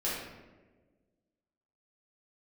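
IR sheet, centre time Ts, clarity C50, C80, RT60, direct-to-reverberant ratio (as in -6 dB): 73 ms, 0.0 dB, 3.5 dB, 1.3 s, -8.5 dB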